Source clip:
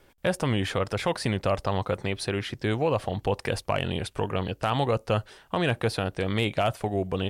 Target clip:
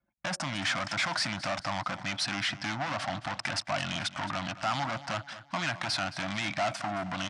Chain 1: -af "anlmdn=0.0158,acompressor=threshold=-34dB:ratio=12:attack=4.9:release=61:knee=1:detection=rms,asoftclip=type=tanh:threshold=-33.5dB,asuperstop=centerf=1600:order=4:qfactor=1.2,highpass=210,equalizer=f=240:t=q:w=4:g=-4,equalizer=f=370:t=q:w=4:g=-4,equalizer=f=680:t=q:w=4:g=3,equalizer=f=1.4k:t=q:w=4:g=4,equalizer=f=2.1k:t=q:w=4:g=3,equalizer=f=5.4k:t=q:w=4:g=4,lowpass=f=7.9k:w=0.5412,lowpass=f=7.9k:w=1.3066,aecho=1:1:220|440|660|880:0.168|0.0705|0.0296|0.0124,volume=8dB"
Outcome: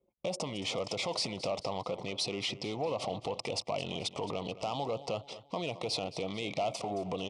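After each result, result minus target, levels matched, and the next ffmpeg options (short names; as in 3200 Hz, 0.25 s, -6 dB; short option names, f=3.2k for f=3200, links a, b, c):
compressor: peak gain reduction +10.5 dB; 2000 Hz band -8.0 dB
-af "anlmdn=0.0158,acompressor=threshold=-22.5dB:ratio=12:attack=4.9:release=61:knee=1:detection=rms,asoftclip=type=tanh:threshold=-33.5dB,asuperstop=centerf=1600:order=4:qfactor=1.2,highpass=210,equalizer=f=240:t=q:w=4:g=-4,equalizer=f=370:t=q:w=4:g=-4,equalizer=f=680:t=q:w=4:g=3,equalizer=f=1.4k:t=q:w=4:g=4,equalizer=f=2.1k:t=q:w=4:g=3,equalizer=f=5.4k:t=q:w=4:g=4,lowpass=f=7.9k:w=0.5412,lowpass=f=7.9k:w=1.3066,aecho=1:1:220|440|660|880:0.168|0.0705|0.0296|0.0124,volume=8dB"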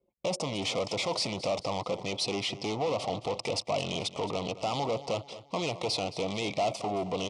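2000 Hz band -8.0 dB
-af "anlmdn=0.0158,acompressor=threshold=-22.5dB:ratio=12:attack=4.9:release=61:knee=1:detection=rms,asoftclip=type=tanh:threshold=-33.5dB,asuperstop=centerf=440:order=4:qfactor=1.2,highpass=210,equalizer=f=240:t=q:w=4:g=-4,equalizer=f=370:t=q:w=4:g=-4,equalizer=f=680:t=q:w=4:g=3,equalizer=f=1.4k:t=q:w=4:g=4,equalizer=f=2.1k:t=q:w=4:g=3,equalizer=f=5.4k:t=q:w=4:g=4,lowpass=f=7.9k:w=0.5412,lowpass=f=7.9k:w=1.3066,aecho=1:1:220|440|660|880:0.168|0.0705|0.0296|0.0124,volume=8dB"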